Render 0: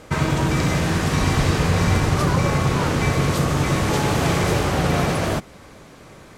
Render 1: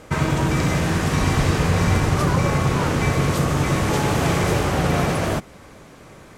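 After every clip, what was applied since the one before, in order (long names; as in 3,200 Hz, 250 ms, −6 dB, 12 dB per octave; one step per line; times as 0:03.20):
parametric band 4,200 Hz −2.5 dB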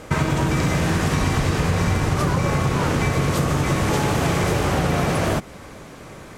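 downward compressor, threshold −21 dBFS, peak gain reduction 7.5 dB
level +4.5 dB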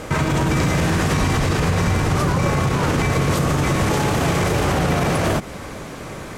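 brickwall limiter −17.5 dBFS, peak gain reduction 9.5 dB
level +7 dB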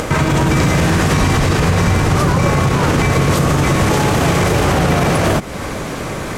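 upward compression, threshold −21 dBFS
level +5 dB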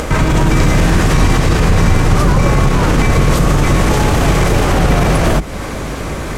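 sub-octave generator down 2 octaves, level +2 dB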